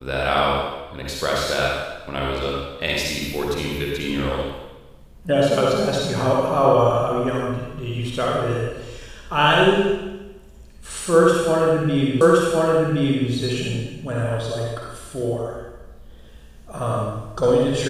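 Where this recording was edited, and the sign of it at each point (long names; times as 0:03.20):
0:12.21: the same again, the last 1.07 s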